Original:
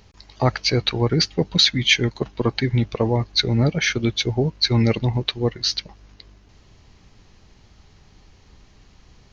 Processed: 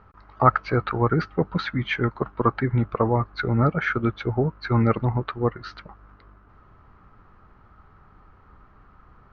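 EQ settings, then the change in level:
low-pass with resonance 1,300 Hz, resonance Q 6.6
−2.5 dB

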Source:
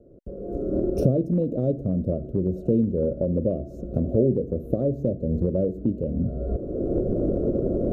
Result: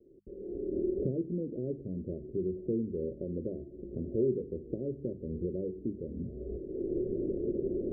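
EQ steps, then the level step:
mains-hum notches 50/100/150/200 Hz
dynamic equaliser 300 Hz, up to −3 dB, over −36 dBFS
transistor ladder low-pass 420 Hz, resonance 65%
−3.5 dB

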